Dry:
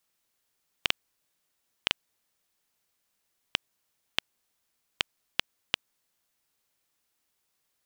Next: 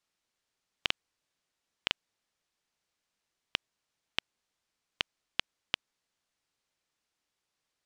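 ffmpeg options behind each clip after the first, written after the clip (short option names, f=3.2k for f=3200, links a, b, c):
-af "lowpass=6.8k,volume=-3dB"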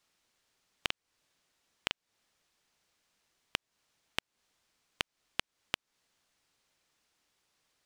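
-af "acompressor=threshold=-38dB:ratio=6,volume=7.5dB"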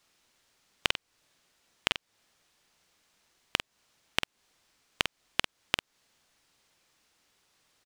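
-filter_complex "[0:a]asplit=2[a][b];[b]adelay=48,volume=-8dB[c];[a][c]amix=inputs=2:normalize=0,volume=6dB"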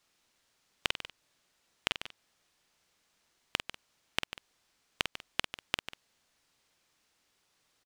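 -af "aecho=1:1:145:0.251,volume=-4dB"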